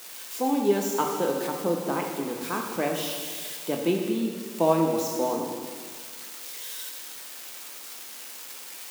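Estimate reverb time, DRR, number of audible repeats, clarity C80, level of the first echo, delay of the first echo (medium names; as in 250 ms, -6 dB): 1.9 s, 0.5 dB, no echo, 5.0 dB, no echo, no echo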